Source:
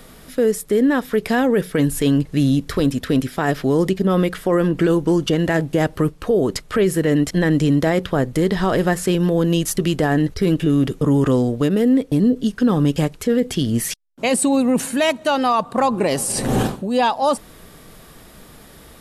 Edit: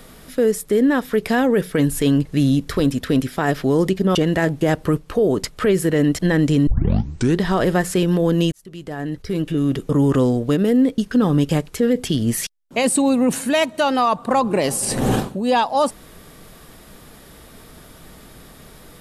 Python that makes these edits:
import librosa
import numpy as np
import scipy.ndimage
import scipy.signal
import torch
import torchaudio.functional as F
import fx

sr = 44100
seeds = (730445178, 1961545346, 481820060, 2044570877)

y = fx.edit(x, sr, fx.cut(start_s=4.15, length_s=1.12),
    fx.tape_start(start_s=7.79, length_s=0.74),
    fx.fade_in_span(start_s=9.64, length_s=1.53),
    fx.cut(start_s=12.1, length_s=0.35), tone=tone)